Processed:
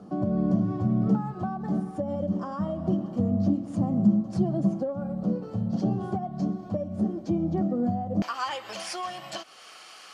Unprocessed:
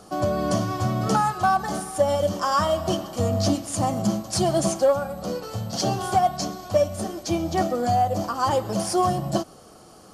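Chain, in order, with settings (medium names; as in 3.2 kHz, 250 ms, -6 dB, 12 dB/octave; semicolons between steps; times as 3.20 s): compression, threshold -22 dBFS, peak gain reduction 7.5 dB; band-pass filter 200 Hz, Q 2.1, from 8.22 s 2.4 kHz; tape noise reduction on one side only encoder only; trim +8 dB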